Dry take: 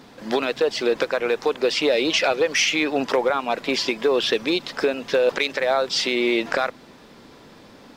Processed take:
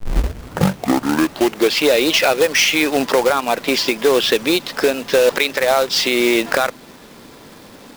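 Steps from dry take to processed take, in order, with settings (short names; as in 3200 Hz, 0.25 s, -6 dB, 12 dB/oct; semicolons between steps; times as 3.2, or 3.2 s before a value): tape start at the beginning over 1.83 s; companded quantiser 4-bit; gain +5 dB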